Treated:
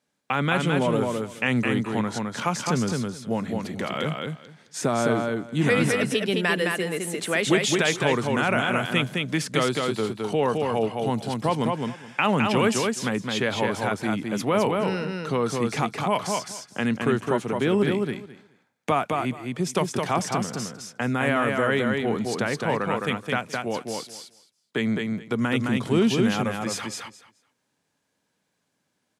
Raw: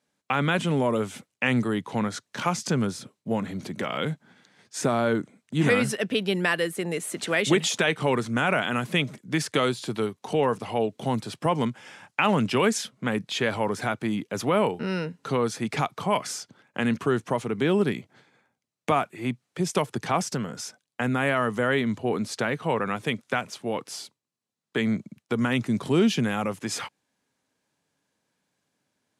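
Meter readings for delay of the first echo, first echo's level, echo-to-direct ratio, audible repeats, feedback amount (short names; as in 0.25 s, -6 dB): 0.213 s, -3.5 dB, -3.5 dB, 2, 16%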